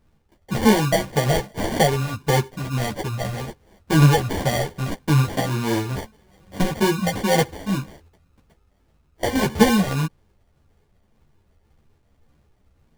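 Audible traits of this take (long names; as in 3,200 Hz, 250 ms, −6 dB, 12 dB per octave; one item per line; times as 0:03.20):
phaser sweep stages 4, 1.8 Hz, lowest notch 340–1,900 Hz
aliases and images of a low sample rate 1,300 Hz, jitter 0%
a shimmering, thickened sound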